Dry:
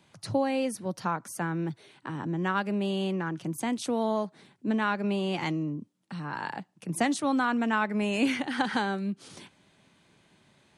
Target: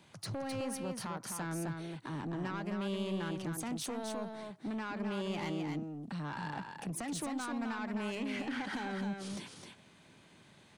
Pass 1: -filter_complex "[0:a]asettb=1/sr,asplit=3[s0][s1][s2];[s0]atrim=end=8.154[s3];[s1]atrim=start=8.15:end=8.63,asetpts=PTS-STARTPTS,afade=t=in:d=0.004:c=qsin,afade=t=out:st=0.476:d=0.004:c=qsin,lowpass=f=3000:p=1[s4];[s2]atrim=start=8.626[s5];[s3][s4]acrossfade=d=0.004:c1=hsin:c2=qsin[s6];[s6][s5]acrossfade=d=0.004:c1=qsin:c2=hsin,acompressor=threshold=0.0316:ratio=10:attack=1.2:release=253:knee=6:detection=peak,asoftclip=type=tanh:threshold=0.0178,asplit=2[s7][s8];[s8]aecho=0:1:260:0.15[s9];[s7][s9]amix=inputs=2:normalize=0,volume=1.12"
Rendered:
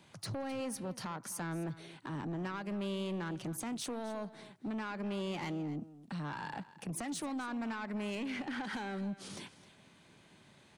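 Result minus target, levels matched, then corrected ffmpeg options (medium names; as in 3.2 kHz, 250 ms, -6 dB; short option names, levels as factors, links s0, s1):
echo-to-direct -11.5 dB
-filter_complex "[0:a]asettb=1/sr,asplit=3[s0][s1][s2];[s0]atrim=end=8.154[s3];[s1]atrim=start=8.15:end=8.63,asetpts=PTS-STARTPTS,afade=t=in:d=0.004:c=qsin,afade=t=out:st=0.476:d=0.004:c=qsin,lowpass=f=3000:p=1[s4];[s2]atrim=start=8.626[s5];[s3][s4]acrossfade=d=0.004:c1=hsin:c2=qsin[s6];[s6][s5]acrossfade=d=0.004:c1=qsin:c2=hsin,acompressor=threshold=0.0316:ratio=10:attack=1.2:release=253:knee=6:detection=peak,asoftclip=type=tanh:threshold=0.0178,asplit=2[s7][s8];[s8]aecho=0:1:260:0.562[s9];[s7][s9]amix=inputs=2:normalize=0,volume=1.12"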